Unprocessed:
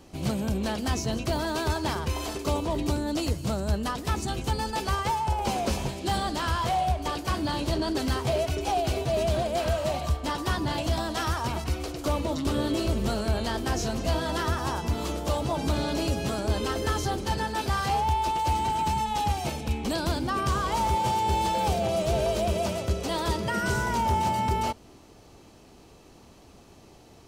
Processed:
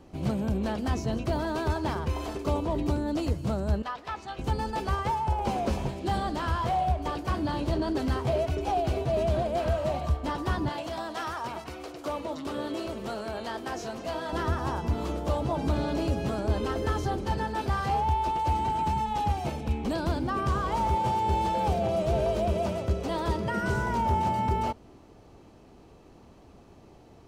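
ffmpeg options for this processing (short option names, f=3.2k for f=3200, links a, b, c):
-filter_complex "[0:a]asettb=1/sr,asplit=3[a][b][c];[a]atrim=end=3.824[d];[b]atrim=start=3.82:end=4.39,asetpts=PTS-STARTPTS,afade=t=in:d=0.004:c=qsin,afade=t=out:st=0.566:d=0.004:c=qsin,acrossover=split=590 5300:gain=0.126 1 0.158[e][f][g];[e][f][g]amix=inputs=3:normalize=0[h];[c]atrim=start=4.386[i];[d][h]acrossfade=d=0.004:c1=hsin:c2=qsin[j];[j][i]acrossfade=d=0.004:c1=qsin:c2=hsin,asettb=1/sr,asplit=3[k][l][m];[k]atrim=end=10.694[n];[l]atrim=start=10.69:end=14.33,asetpts=PTS-STARTPTS,afade=t=in:d=0.004:c=qsin,afade=t=out:st=3.636:d=0.004:c=qsin,highpass=f=560:p=1[o];[m]atrim=start=14.326[p];[n][o]acrossfade=d=0.004:c1=hsin:c2=qsin[q];[q][p]acrossfade=d=0.004:c1=qsin:c2=hsin,highshelf=f=2.7k:g=-12"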